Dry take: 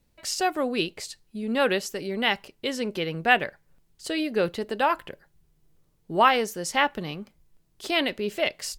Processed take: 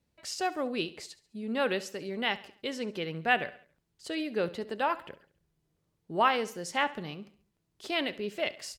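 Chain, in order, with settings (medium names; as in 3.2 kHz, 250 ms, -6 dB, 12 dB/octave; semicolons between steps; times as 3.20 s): high-pass 60 Hz; treble shelf 10 kHz -9 dB; feedback delay 69 ms, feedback 45%, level -17.5 dB; trim -6 dB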